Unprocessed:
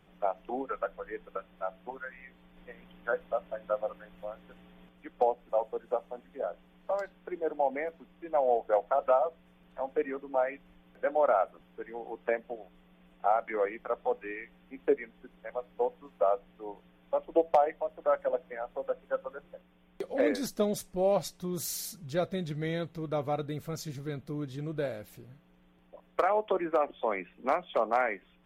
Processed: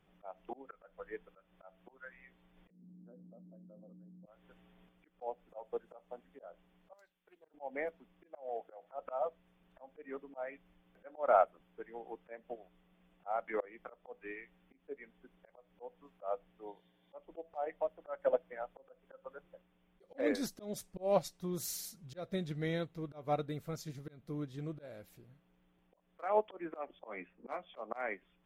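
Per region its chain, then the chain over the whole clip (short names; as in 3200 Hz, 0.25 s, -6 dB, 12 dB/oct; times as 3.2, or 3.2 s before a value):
2.7–4.26 Butterworth band-pass 210 Hz, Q 1.7 + fast leveller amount 100%
6.93–7.54 pre-emphasis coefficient 0.9 + Doppler distortion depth 0.19 ms
8.26–8.91 HPF 240 Hz 6 dB/oct + notch 960 Hz, Q 9.8 + compressor 10:1, threshold -28 dBFS
16.67–17.14 bell 3800 Hz +13.5 dB 0.36 oct + notch comb 1300 Hz
26.99–27.82 low-pass opened by the level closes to 760 Hz, open at -24 dBFS + doubler 15 ms -7 dB
whole clip: auto swell 0.204 s; upward expander 1.5:1, over -44 dBFS; gain +1 dB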